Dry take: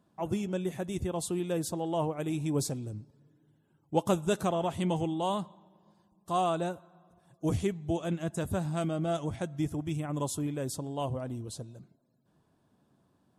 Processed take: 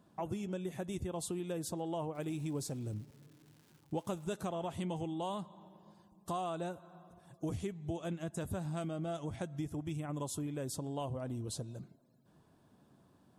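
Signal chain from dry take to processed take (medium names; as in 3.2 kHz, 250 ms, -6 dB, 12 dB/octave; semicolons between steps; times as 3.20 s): compression 4:1, threshold -41 dBFS, peak gain reduction 16.5 dB; 2.13–4.32 s: crackle 390 per s -57 dBFS; trim +3.5 dB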